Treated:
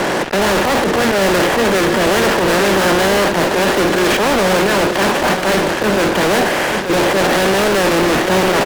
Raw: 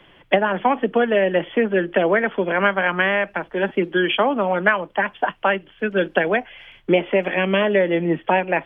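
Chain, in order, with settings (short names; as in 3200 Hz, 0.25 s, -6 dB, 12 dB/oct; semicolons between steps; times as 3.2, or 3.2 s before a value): per-bin compression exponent 0.4; gate -15 dBFS, range -11 dB; LPF 1100 Hz 6 dB/oct; low shelf 120 Hz -4.5 dB; auto swell 0.104 s; fuzz box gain 43 dB, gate -44 dBFS; echo 0.882 s -8 dB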